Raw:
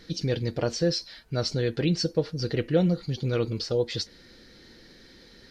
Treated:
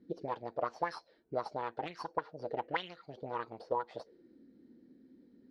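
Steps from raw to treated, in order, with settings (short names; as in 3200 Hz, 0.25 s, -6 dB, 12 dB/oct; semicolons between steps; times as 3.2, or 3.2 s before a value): added harmonics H 3 -25 dB, 4 -11 dB, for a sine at -10.5 dBFS; auto-wah 250–3000 Hz, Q 4.8, up, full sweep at -16 dBFS; gain +3.5 dB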